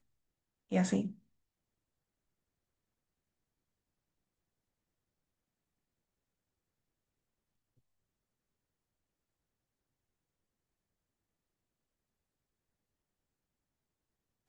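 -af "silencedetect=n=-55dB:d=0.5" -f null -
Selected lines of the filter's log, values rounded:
silence_start: 0.00
silence_end: 0.71 | silence_duration: 0.71
silence_start: 1.18
silence_end: 14.48 | silence_duration: 13.30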